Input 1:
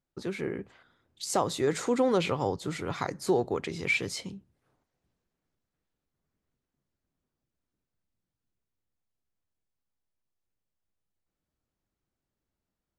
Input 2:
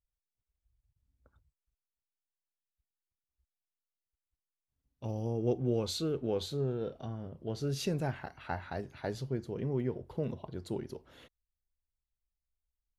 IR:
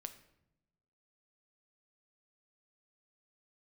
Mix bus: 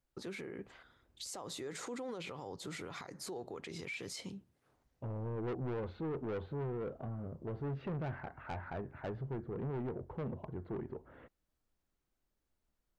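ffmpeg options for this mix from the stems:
-filter_complex "[0:a]lowshelf=f=160:g=-6.5,alimiter=limit=-19dB:level=0:latency=1:release=255,volume=0.5dB[a];[1:a]lowpass=f=1.8k:w=0.5412,lowpass=f=1.8k:w=1.3066,asoftclip=type=tanh:threshold=-35.5dB,volume=2dB[b];[a][b]amix=inputs=2:normalize=0,alimiter=level_in=11dB:limit=-24dB:level=0:latency=1:release=126,volume=-11dB"

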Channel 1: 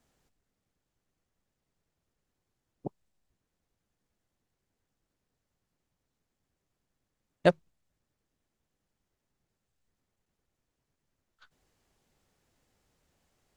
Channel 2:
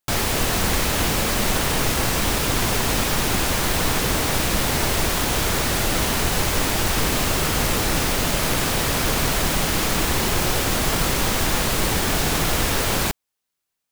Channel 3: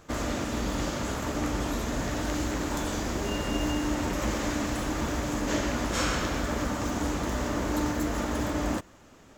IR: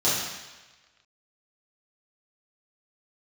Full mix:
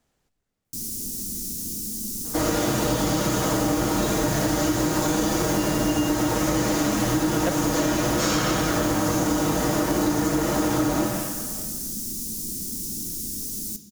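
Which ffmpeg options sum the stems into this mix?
-filter_complex "[0:a]volume=1.5dB[a];[1:a]firequalizer=gain_entry='entry(130,0);entry(220,12);entry(700,-28);entry(5500,10);entry(9700,15)':delay=0.05:min_phase=1,adelay=650,volume=-19dB,asplit=2[b][c];[c]volume=-23dB[d];[2:a]aecho=1:1:6.3:0.65,adelay=2250,volume=2.5dB,asplit=2[e][f];[f]volume=-9.5dB[g];[3:a]atrim=start_sample=2205[h];[d][g]amix=inputs=2:normalize=0[i];[i][h]afir=irnorm=-1:irlink=0[j];[a][b][e][j]amix=inputs=4:normalize=0,acompressor=threshold=-19dB:ratio=6"

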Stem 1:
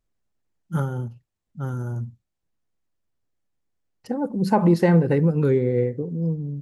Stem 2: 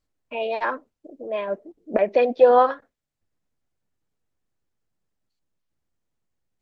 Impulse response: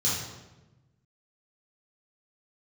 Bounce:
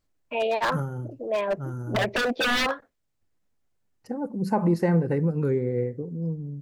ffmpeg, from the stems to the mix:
-filter_complex "[0:a]equalizer=f=3.4k:w=2.6:g=-10.5,volume=-5dB[a];[1:a]aeval=exprs='0.1*(abs(mod(val(0)/0.1+3,4)-2)-1)':c=same,volume=1.5dB[b];[a][b]amix=inputs=2:normalize=0"

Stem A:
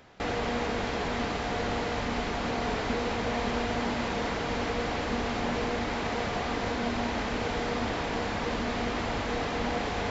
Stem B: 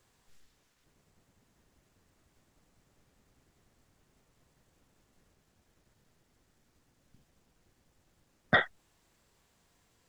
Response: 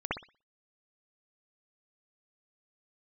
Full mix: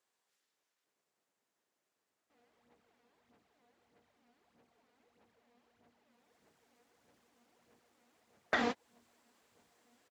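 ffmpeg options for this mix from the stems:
-filter_complex "[0:a]aphaser=in_gain=1:out_gain=1:delay=4.2:decay=0.6:speed=1.6:type=sinusoidal,highpass=130,adelay=2100,volume=2.5dB[a];[1:a]highpass=410,volume=-2.5dB,afade=t=in:st=6.05:d=0.39:silence=0.316228,asplit=2[b][c];[c]apad=whole_len=538088[d];[a][d]sidechaingate=range=-48dB:threshold=-40dB:ratio=16:detection=peak[e];[e][b]amix=inputs=2:normalize=0,acompressor=threshold=-29dB:ratio=6"

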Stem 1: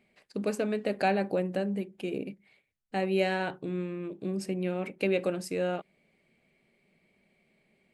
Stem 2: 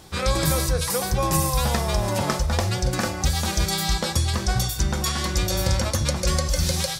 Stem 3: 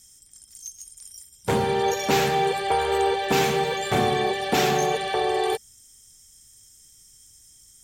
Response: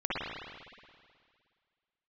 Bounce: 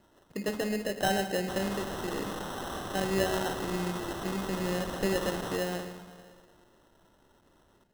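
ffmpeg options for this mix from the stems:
-filter_complex "[0:a]volume=-3.5dB,asplit=2[a][b];[b]volume=-15dB[c];[2:a]highshelf=f=6.9k:g=-6,aeval=exprs='(mod(17.8*val(0)+1,2)-1)/17.8':c=same,volume=-13dB,asplit=2[d][e];[e]volume=-5.5dB[f];[3:a]atrim=start_sample=2205[g];[c][f]amix=inputs=2:normalize=0[h];[h][g]afir=irnorm=-1:irlink=0[i];[a][d][i]amix=inputs=3:normalize=0,acrusher=samples=19:mix=1:aa=0.000001"

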